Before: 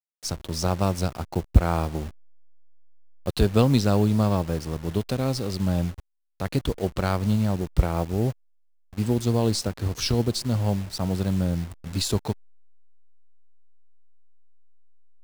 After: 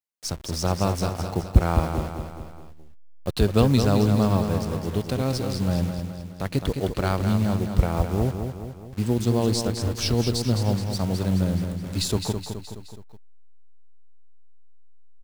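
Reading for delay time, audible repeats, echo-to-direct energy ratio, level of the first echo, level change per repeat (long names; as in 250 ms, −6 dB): 211 ms, 4, −5.5 dB, −7.0 dB, −5.5 dB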